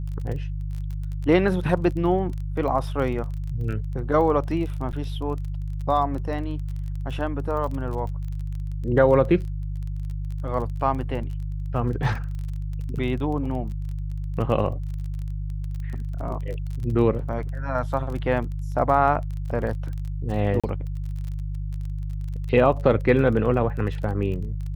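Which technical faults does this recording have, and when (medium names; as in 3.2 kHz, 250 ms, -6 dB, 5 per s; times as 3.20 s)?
crackle 26 per s -32 dBFS
hum 50 Hz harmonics 3 -29 dBFS
4.92–4.93 s: dropout 8.6 ms
20.60–20.64 s: dropout 36 ms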